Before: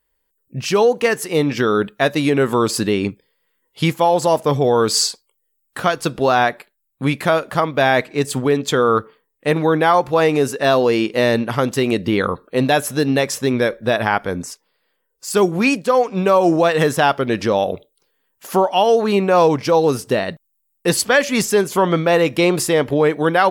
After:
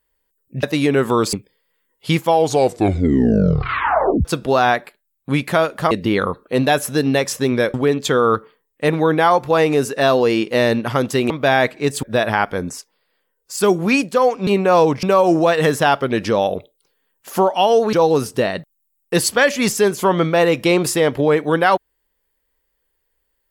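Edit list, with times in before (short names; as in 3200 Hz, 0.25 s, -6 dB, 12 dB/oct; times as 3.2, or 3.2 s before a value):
0.63–2.06 cut
2.76–3.06 cut
3.98 tape stop 2.00 s
7.64–8.37 swap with 11.93–13.76
19.1–19.66 move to 16.2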